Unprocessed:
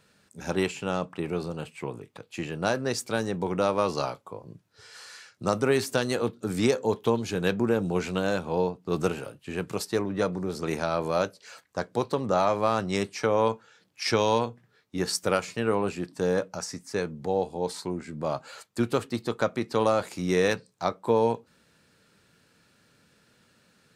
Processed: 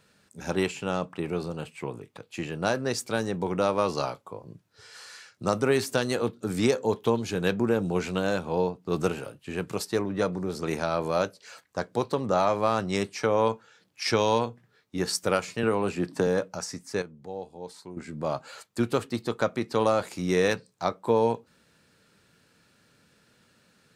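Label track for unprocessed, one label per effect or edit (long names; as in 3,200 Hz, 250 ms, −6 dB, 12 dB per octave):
15.630000	16.270000	multiband upward and downward compressor depth 100%
17.020000	17.970000	clip gain −10.5 dB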